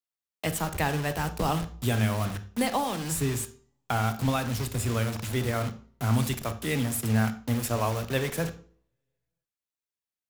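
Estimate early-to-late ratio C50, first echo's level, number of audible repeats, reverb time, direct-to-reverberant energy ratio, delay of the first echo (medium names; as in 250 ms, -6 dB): 14.0 dB, no echo, no echo, 0.50 s, 10.0 dB, no echo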